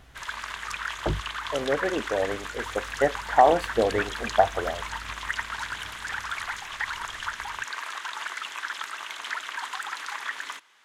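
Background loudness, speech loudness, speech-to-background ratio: -33.0 LUFS, -26.5 LUFS, 6.5 dB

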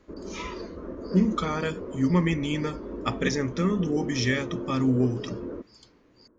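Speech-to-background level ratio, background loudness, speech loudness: 10.0 dB, -37.0 LUFS, -27.0 LUFS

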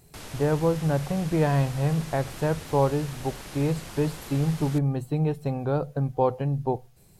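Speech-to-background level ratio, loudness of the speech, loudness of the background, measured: 14.0 dB, -26.5 LUFS, -40.5 LUFS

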